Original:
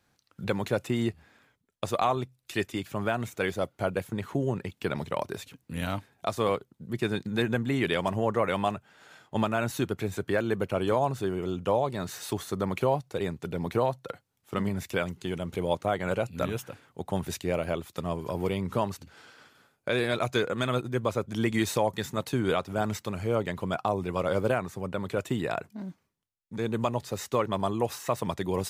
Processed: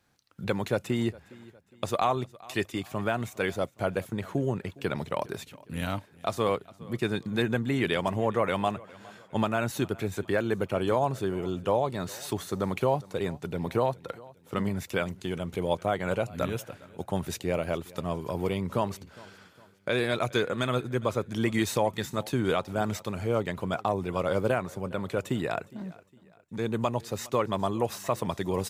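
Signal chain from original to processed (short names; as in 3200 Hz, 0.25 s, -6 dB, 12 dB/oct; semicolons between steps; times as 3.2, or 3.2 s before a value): feedback echo 0.41 s, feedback 42%, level -22 dB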